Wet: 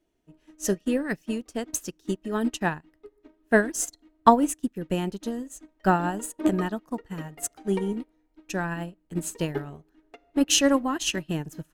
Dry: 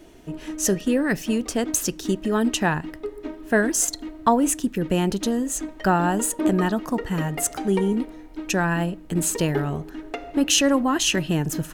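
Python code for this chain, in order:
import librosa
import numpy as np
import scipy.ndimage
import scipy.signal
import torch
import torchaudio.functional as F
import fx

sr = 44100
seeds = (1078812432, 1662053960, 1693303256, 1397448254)

y = fx.upward_expand(x, sr, threshold_db=-34.0, expansion=2.5)
y = F.gain(torch.from_numpy(y), 4.0).numpy()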